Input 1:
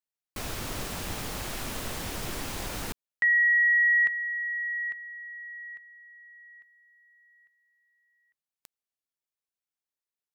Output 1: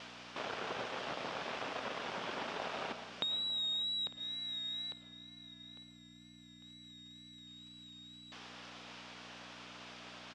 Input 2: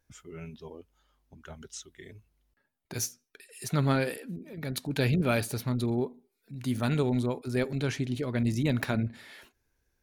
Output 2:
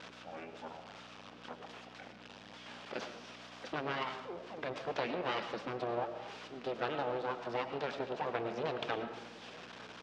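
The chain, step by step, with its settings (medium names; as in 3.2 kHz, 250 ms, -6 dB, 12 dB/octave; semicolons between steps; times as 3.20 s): zero-crossing glitches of -32 dBFS; reverb removal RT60 0.51 s; treble shelf 2.7 kHz -7 dB; compression, threshold -30 dBFS; full-wave rectifier; algorithmic reverb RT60 0.94 s, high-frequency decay 0.5×, pre-delay 65 ms, DRR 8 dB; vibrato 2.1 Hz 39 cents; on a send: delay 903 ms -20 dB; on the sum: hum 60 Hz, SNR 23 dB; cabinet simulation 330–4400 Hz, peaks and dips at 330 Hz -6 dB, 2 kHz -4 dB, 4.2 kHz -5 dB; trim +5.5 dB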